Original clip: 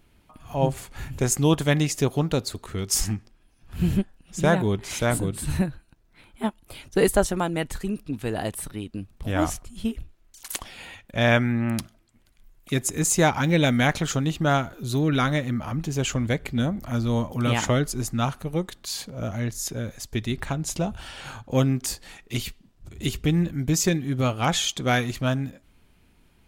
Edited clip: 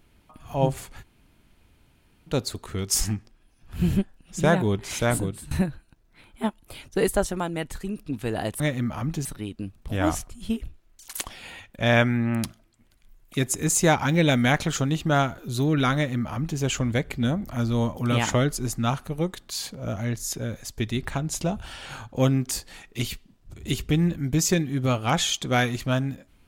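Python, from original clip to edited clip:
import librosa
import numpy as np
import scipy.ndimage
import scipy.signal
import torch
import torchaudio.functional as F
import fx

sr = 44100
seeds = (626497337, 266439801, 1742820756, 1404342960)

y = fx.edit(x, sr, fx.room_tone_fill(start_s=0.99, length_s=1.32, crossfade_s=0.1),
    fx.fade_out_to(start_s=5.2, length_s=0.31, floor_db=-21.5),
    fx.clip_gain(start_s=6.87, length_s=1.11, db=-3.0),
    fx.duplicate(start_s=15.3, length_s=0.65, to_s=8.6), tone=tone)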